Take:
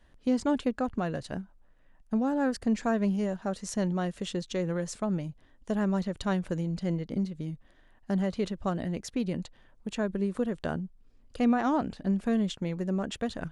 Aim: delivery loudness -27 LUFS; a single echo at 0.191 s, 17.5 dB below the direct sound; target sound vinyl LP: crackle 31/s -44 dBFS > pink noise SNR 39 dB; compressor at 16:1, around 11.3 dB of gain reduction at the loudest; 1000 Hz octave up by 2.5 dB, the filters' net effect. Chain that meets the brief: bell 1000 Hz +3.5 dB; compressor 16:1, threshold -32 dBFS; echo 0.191 s -17.5 dB; crackle 31/s -44 dBFS; pink noise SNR 39 dB; gain +11 dB

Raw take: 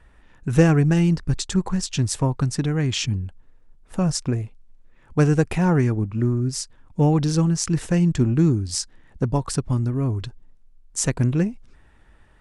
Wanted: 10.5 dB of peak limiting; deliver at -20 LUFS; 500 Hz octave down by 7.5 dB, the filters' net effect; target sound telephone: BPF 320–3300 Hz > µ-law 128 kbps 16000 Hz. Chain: bell 500 Hz -8 dB; limiter -15.5 dBFS; BPF 320–3300 Hz; gain +14.5 dB; µ-law 128 kbps 16000 Hz

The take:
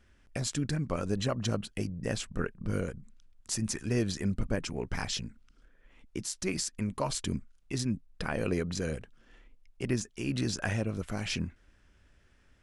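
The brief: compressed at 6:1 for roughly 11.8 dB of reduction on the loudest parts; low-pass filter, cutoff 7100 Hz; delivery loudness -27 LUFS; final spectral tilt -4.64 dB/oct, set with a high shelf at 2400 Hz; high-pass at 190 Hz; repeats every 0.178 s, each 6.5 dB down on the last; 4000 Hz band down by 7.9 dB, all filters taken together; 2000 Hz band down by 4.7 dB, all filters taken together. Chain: HPF 190 Hz; LPF 7100 Hz; bell 2000 Hz -3 dB; high shelf 2400 Hz -4 dB; bell 4000 Hz -5 dB; compressor 6:1, threshold -41 dBFS; feedback echo 0.178 s, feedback 47%, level -6.5 dB; gain +18.5 dB

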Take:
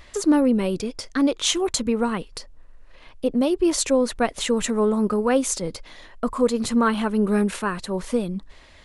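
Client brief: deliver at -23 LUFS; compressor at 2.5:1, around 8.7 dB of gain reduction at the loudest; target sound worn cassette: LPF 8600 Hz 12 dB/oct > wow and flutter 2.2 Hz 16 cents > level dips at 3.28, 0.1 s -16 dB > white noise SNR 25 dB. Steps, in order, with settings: compressor 2.5:1, threshold -28 dBFS; LPF 8600 Hz 12 dB/oct; wow and flutter 2.2 Hz 16 cents; level dips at 3.28, 0.1 s -16 dB; white noise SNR 25 dB; gain +7 dB

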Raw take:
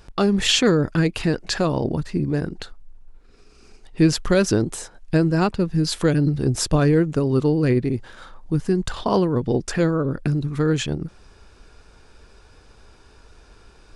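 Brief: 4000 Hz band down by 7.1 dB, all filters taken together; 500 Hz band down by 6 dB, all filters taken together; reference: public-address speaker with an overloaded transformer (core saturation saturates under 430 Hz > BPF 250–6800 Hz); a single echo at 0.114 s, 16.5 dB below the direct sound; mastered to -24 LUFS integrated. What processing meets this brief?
bell 500 Hz -7 dB; bell 4000 Hz -9 dB; echo 0.114 s -16.5 dB; core saturation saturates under 430 Hz; BPF 250–6800 Hz; gain +5 dB

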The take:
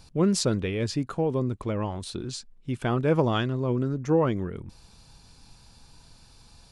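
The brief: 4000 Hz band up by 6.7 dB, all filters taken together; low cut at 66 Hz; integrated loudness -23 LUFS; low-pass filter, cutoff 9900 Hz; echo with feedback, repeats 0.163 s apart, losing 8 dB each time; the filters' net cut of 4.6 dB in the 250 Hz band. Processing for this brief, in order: HPF 66 Hz; LPF 9900 Hz; bell 250 Hz -6.5 dB; bell 4000 Hz +8.5 dB; feedback echo 0.163 s, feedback 40%, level -8 dB; gain +4.5 dB

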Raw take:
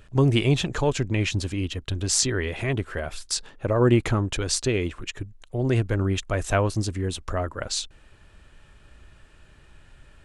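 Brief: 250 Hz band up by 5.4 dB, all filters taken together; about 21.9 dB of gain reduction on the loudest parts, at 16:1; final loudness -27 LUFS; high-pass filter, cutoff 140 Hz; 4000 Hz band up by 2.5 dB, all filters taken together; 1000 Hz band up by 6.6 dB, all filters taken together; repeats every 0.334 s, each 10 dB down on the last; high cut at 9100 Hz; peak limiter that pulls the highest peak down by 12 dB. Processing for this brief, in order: HPF 140 Hz; LPF 9100 Hz; bell 250 Hz +7 dB; bell 1000 Hz +8 dB; bell 4000 Hz +3 dB; compressor 16:1, threshold -32 dBFS; limiter -28.5 dBFS; feedback echo 0.334 s, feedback 32%, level -10 dB; gain +12.5 dB

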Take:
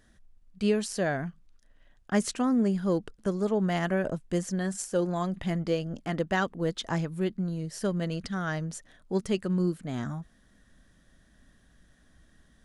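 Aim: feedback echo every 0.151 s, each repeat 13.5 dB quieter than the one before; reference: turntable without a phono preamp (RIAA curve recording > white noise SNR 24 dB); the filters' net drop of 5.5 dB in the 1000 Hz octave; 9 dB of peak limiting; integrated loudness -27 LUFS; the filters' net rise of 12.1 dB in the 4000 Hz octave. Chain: bell 1000 Hz -8 dB; bell 4000 Hz +8 dB; limiter -21.5 dBFS; RIAA curve recording; feedback echo 0.151 s, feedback 21%, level -13.5 dB; white noise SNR 24 dB; gain +4.5 dB

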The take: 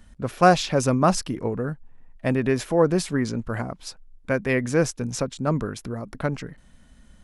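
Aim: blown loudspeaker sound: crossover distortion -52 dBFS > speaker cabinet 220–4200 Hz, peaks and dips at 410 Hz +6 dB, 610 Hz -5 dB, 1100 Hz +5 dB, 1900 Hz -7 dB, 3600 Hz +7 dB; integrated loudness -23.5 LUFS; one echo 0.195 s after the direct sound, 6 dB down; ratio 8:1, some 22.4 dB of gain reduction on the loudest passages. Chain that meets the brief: compressor 8:1, threshold -34 dBFS; echo 0.195 s -6 dB; crossover distortion -52 dBFS; speaker cabinet 220–4200 Hz, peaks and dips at 410 Hz +6 dB, 610 Hz -5 dB, 1100 Hz +5 dB, 1900 Hz -7 dB, 3600 Hz +7 dB; gain +17 dB

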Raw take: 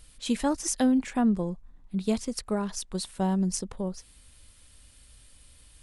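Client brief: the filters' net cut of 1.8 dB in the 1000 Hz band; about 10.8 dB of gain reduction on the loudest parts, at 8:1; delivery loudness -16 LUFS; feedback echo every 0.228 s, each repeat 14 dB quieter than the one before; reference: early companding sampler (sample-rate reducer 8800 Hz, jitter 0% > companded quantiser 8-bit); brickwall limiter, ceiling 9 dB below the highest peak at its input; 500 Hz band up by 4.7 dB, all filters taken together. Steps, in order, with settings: bell 500 Hz +7 dB; bell 1000 Hz -6 dB; compressor 8:1, threshold -29 dBFS; limiter -27 dBFS; feedback echo 0.228 s, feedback 20%, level -14 dB; sample-rate reducer 8800 Hz, jitter 0%; companded quantiser 8-bit; gain +21.5 dB

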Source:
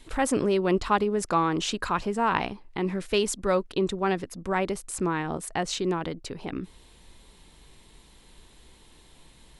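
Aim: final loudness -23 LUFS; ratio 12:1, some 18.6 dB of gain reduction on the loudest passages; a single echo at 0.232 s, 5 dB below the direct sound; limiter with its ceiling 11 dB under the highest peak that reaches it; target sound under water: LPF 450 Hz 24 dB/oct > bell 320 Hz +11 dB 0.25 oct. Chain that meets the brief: compressor 12:1, threshold -38 dBFS; limiter -36 dBFS; LPF 450 Hz 24 dB/oct; bell 320 Hz +11 dB 0.25 oct; echo 0.232 s -5 dB; gain +21.5 dB

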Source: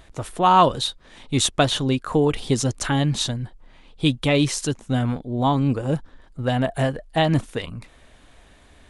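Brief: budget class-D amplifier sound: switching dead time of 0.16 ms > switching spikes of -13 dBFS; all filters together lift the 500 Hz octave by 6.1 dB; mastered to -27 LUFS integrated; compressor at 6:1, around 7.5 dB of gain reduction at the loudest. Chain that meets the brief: bell 500 Hz +7.5 dB; compressor 6:1, threshold -16 dBFS; switching dead time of 0.16 ms; switching spikes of -13 dBFS; gain -3.5 dB

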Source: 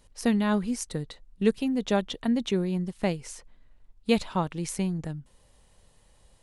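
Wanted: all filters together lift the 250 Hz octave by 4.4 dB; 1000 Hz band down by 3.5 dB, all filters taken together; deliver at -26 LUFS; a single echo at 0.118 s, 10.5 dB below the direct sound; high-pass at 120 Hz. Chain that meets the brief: HPF 120 Hz; bell 250 Hz +6 dB; bell 1000 Hz -5 dB; echo 0.118 s -10.5 dB; gain -1 dB

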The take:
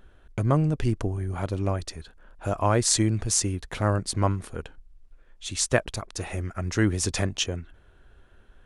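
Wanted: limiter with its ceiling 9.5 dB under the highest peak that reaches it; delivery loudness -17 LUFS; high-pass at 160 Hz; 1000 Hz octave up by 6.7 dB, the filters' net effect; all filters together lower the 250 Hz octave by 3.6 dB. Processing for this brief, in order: HPF 160 Hz; bell 250 Hz -4.5 dB; bell 1000 Hz +8.5 dB; gain +12 dB; limiter 0 dBFS

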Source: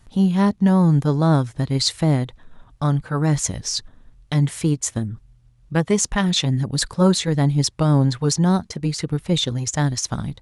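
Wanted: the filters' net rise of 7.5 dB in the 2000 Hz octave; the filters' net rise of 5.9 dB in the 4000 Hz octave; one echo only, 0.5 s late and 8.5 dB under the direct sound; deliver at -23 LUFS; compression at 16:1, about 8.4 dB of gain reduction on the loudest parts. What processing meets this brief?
bell 2000 Hz +8 dB; bell 4000 Hz +5 dB; compressor 16:1, threshold -18 dBFS; echo 0.5 s -8.5 dB; gain +0.5 dB

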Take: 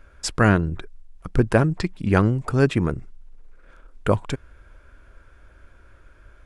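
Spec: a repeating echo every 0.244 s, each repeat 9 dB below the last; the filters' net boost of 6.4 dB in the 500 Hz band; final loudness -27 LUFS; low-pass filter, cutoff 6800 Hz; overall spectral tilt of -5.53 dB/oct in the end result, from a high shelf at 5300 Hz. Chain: LPF 6800 Hz; bell 500 Hz +8 dB; high shelf 5300 Hz -7 dB; feedback echo 0.244 s, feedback 35%, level -9 dB; gain -8 dB

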